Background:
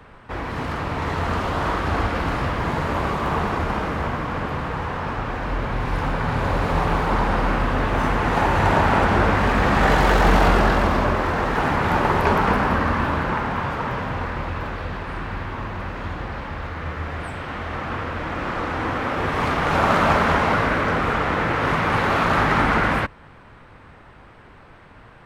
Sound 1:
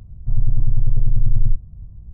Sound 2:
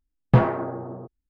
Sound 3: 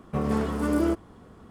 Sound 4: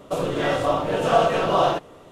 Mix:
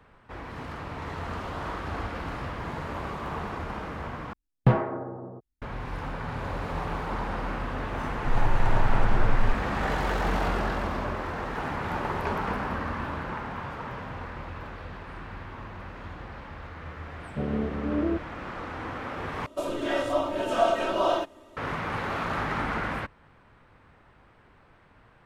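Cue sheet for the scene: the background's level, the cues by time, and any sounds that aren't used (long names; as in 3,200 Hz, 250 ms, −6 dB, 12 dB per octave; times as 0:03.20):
background −11 dB
0:04.33: overwrite with 2 −4 dB
0:07.98: mix in 1 −8 dB
0:17.23: mix in 3 −3 dB + Butterworth low-pass 740 Hz
0:19.46: overwrite with 4 −8 dB + comb filter 3.2 ms, depth 91%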